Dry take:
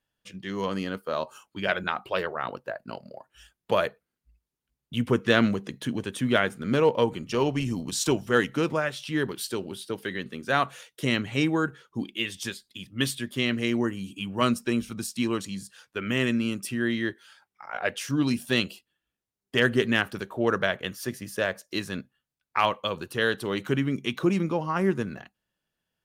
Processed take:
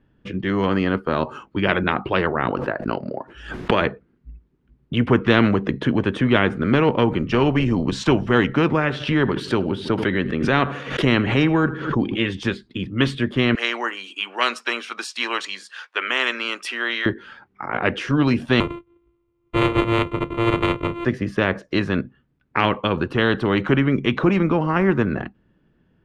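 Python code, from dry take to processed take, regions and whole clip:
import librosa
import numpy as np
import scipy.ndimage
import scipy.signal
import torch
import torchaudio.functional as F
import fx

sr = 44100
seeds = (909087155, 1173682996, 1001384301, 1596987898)

y = fx.chain(x, sr, fx.bass_treble(bass_db=-10, treble_db=3),
    fx.pre_swell(db_per_s=100.0), at=(2.51, 3.82))
y = fx.chain(y, sr, fx.echo_feedback(ms=80, feedback_pct=40, wet_db=-23.0),
    fx.pre_swell(db_per_s=110.0), at=(8.79, 12.19))
y = fx.chain(y, sr, fx.highpass(hz=730.0, slope=24),
    fx.high_shelf(hz=2100.0, db=10.5), at=(13.55, 17.06))
y = fx.chain(y, sr, fx.sample_sort(block=128),
    fx.fixed_phaser(hz=1100.0, stages=8), at=(18.6, 21.05))
y = scipy.signal.sosfilt(scipy.signal.butter(2, 1700.0, 'lowpass', fs=sr, output='sos'), y)
y = fx.low_shelf_res(y, sr, hz=460.0, db=9.0, q=1.5)
y = fx.spectral_comp(y, sr, ratio=2.0)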